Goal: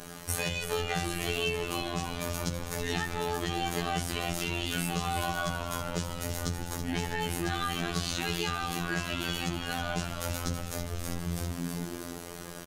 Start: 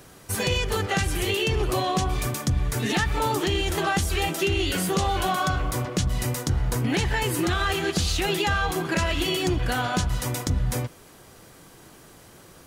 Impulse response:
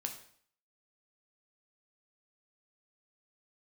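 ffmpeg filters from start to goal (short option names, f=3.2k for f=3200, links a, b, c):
-filter_complex "[0:a]aecho=1:1:6.8:0.74,asplit=8[a][b][c][d][e][f][g][h];[b]adelay=325,afreqshift=-100,volume=-7dB[i];[c]adelay=650,afreqshift=-200,volume=-12.2dB[j];[d]adelay=975,afreqshift=-300,volume=-17.4dB[k];[e]adelay=1300,afreqshift=-400,volume=-22.6dB[l];[f]adelay=1625,afreqshift=-500,volume=-27.8dB[m];[g]adelay=1950,afreqshift=-600,volume=-33dB[n];[h]adelay=2275,afreqshift=-700,volume=-38.2dB[o];[a][i][j][k][l][m][n][o]amix=inputs=8:normalize=0,acompressor=threshold=-33dB:ratio=5,asplit=2[p][q];[1:a]atrim=start_sample=2205[r];[q][r]afir=irnorm=-1:irlink=0,volume=2dB[s];[p][s]amix=inputs=2:normalize=0,afftfilt=real='hypot(re,im)*cos(PI*b)':imag='0':win_size=2048:overlap=0.75"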